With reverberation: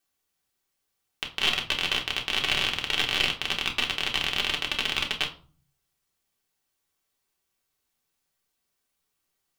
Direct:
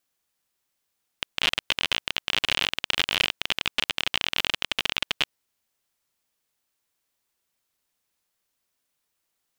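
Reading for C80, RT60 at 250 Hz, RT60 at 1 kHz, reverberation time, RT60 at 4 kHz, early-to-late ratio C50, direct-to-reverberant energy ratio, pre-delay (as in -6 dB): 18.0 dB, 0.65 s, 0.40 s, 0.40 s, 0.30 s, 12.5 dB, 0.5 dB, 3 ms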